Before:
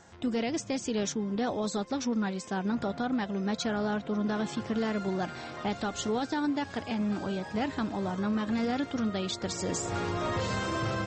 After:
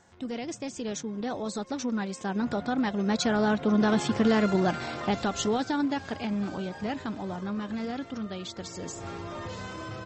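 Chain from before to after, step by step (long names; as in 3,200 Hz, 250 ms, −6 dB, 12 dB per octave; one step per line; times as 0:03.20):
source passing by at 0:04.59, 8 m/s, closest 9.1 metres
tempo change 1.1×
level +7.5 dB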